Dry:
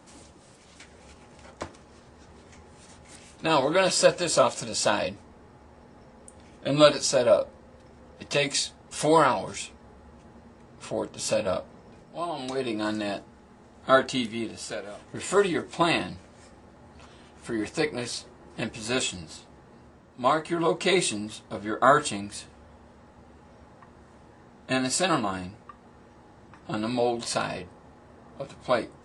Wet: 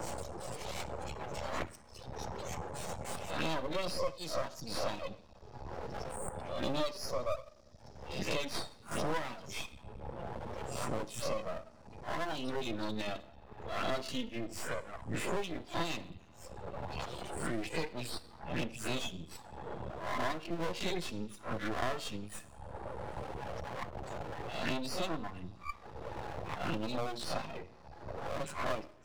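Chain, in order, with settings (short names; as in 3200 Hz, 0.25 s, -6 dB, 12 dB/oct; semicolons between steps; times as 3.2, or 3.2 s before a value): spectral swells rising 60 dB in 0.37 s; reverb removal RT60 1.2 s; spectral gate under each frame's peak -20 dB strong; dynamic EQ 370 Hz, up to -4 dB, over -37 dBFS, Q 1.2; envelope phaser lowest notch 220 Hz, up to 1600 Hz, full sweep at -29 dBFS; two-slope reverb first 0.5 s, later 2.5 s, from -28 dB, DRR 12.5 dB; half-wave rectifier; three-band squash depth 100%; gain -1.5 dB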